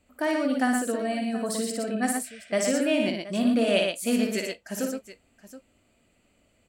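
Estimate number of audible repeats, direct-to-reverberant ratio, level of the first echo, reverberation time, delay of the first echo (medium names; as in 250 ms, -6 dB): 3, no reverb, -5.0 dB, no reverb, 57 ms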